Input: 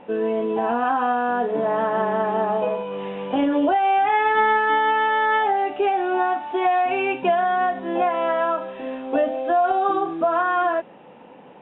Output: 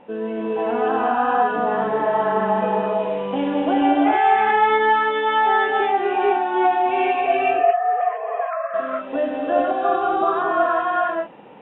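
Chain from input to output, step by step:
0:07.19–0:08.74: three sine waves on the formant tracks
reverb whose tail is shaped and stops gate 480 ms rising, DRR −4.5 dB
level −3.5 dB

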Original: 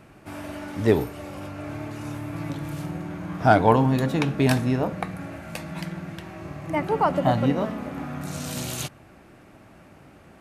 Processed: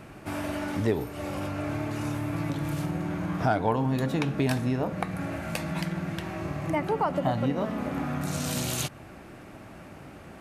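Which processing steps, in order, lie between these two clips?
downward compressor 2.5 to 1, threshold −32 dBFS, peak gain reduction 14 dB
level +4.5 dB

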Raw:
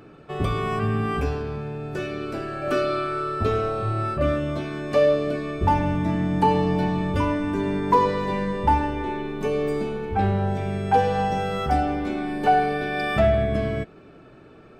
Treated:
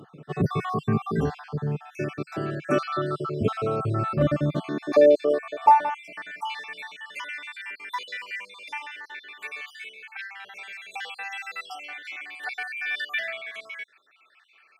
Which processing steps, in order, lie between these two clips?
time-frequency cells dropped at random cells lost 52%
high-pass filter sweep 150 Hz → 2,100 Hz, 0:04.45–0:06.53

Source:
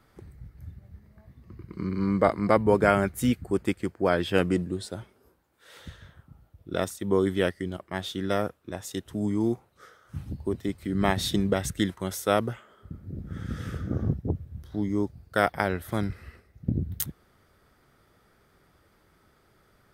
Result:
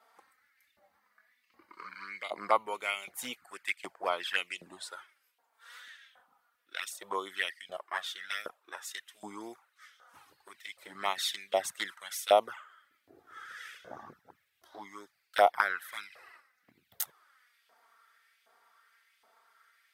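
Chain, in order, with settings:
flanger swept by the level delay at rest 4.5 ms, full sweep at −19 dBFS
auto-filter high-pass saw up 1.3 Hz 660–2,800 Hz

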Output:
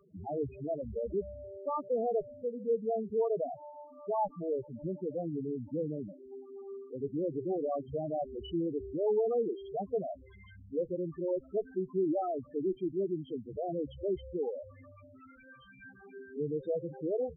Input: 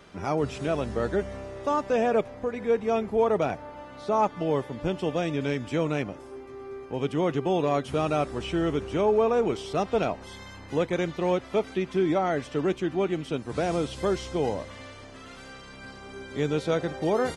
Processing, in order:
harmonic generator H 5 −25 dB, 8 −27 dB, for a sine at −12.5 dBFS
spectral peaks only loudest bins 4
level −6.5 dB

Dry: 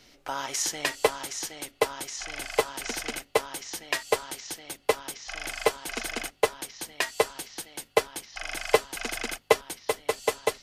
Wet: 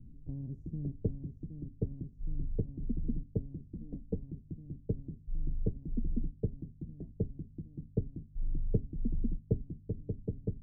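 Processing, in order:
inverse Chebyshev low-pass filter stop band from 1,100 Hz, stop band 80 dB
0:03.75–0:04.16: comb filter 4 ms, depth 74%
level +15.5 dB

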